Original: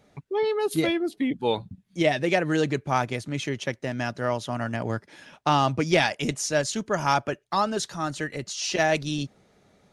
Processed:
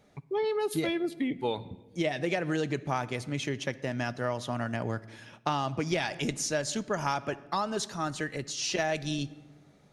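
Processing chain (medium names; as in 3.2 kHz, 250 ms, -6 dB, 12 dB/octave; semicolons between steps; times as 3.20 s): on a send at -17 dB: reverberation RT60 1.0 s, pre-delay 5 ms; on the sum: compression, threshold -23 dBFS, peak gain reduction 8 dB; trim -2.5 dB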